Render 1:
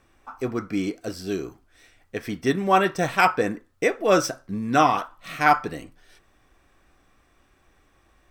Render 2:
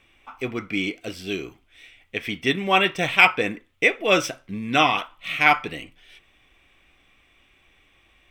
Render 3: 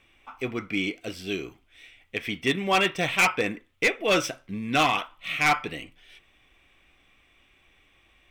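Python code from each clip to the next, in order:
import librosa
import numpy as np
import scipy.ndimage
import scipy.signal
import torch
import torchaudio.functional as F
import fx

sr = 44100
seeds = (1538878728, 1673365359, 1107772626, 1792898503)

y1 = fx.band_shelf(x, sr, hz=2700.0, db=13.5, octaves=1.0)
y1 = F.gain(torch.from_numpy(y1), -2.0).numpy()
y2 = np.clip(y1, -10.0 ** (-13.5 / 20.0), 10.0 ** (-13.5 / 20.0))
y2 = F.gain(torch.from_numpy(y2), -2.0).numpy()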